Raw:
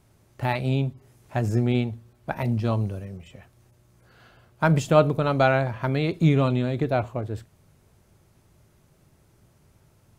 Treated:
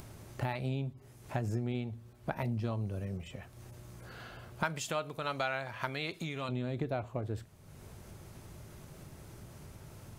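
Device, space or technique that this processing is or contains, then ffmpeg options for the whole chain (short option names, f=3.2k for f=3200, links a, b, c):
upward and downward compression: -filter_complex "[0:a]acompressor=mode=upward:threshold=-40dB:ratio=2.5,acompressor=threshold=-32dB:ratio=5,asettb=1/sr,asplit=3[a][b][c];[a]atrim=end=4.634[d];[b]atrim=start=4.63:end=6.49,asetpts=PTS-STARTPTS,afade=t=in:d=0.004:c=qsin,afade=t=out:st=1.856:d=0.004:c=qsin,tiltshelf=f=760:g=-8.5[e];[c]atrim=start=6.486[f];[d][e]acrossfade=d=0.004:c1=hsin:c2=qsin[g];[g][f]acrossfade=d=0.004:c1=qsin:c2=hsin"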